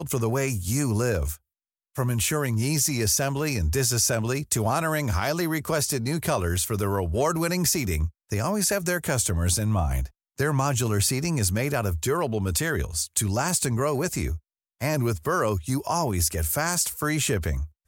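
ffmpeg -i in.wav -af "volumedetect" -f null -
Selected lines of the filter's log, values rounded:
mean_volume: -25.3 dB
max_volume: -9.1 dB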